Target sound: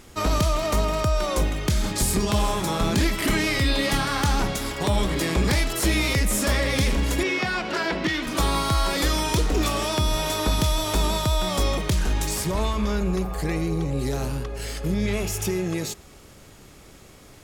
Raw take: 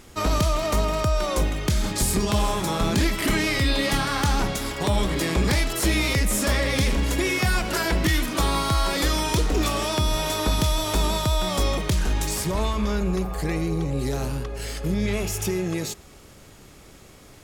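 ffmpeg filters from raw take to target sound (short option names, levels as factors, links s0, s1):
-filter_complex "[0:a]asettb=1/sr,asplit=3[s0][s1][s2];[s0]atrim=end=7.234[s3];[s1]atrim=start=7.23:end=8.27,asetpts=PTS-STARTPTS,afade=t=in:d=0.004:c=qsin,afade=t=out:st=1.036:d=0.004:c=qsin,acrossover=split=160 5500:gain=0.126 1 0.0891[s4][s5][s6];[s4][s5][s6]amix=inputs=3:normalize=0[s7];[s2]atrim=start=8.266[s8];[s3][s7]acrossfade=d=0.004:c1=hsin:c2=qsin[s9];[s9][s8]acrossfade=d=0.004:c1=qsin:c2=hsin"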